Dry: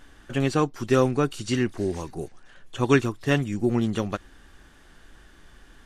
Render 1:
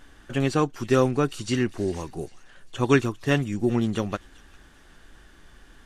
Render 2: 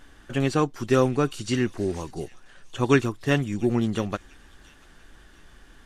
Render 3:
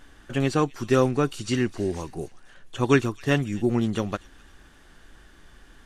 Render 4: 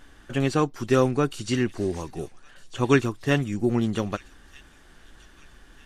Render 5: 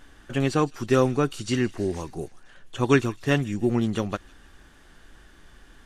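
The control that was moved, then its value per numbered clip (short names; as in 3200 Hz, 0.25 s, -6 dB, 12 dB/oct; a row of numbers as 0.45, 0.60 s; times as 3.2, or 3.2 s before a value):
thin delay, time: 0.399, 0.689, 0.258, 1.244, 0.158 s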